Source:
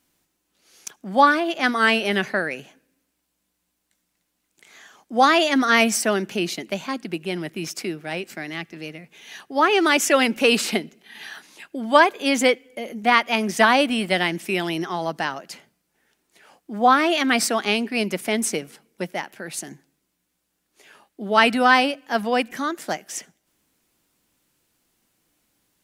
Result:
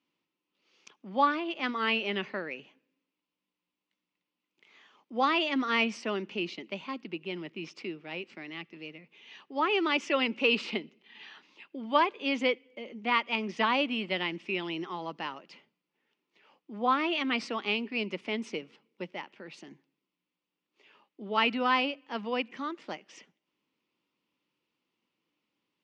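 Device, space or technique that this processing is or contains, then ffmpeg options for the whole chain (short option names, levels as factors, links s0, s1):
kitchen radio: -af "highpass=190,equalizer=f=700:t=q:w=4:g=-9,equalizer=f=1000:t=q:w=4:g=3,equalizer=f=1600:t=q:w=4:g=-9,equalizer=f=2700:t=q:w=4:g=4,equalizer=f=4000:t=q:w=4:g=-4,lowpass=f=4300:w=0.5412,lowpass=f=4300:w=1.3066,volume=0.376"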